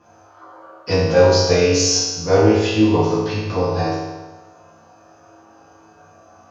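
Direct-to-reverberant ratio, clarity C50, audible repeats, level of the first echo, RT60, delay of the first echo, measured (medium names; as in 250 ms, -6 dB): -11.5 dB, -0.5 dB, no echo, no echo, 1.2 s, no echo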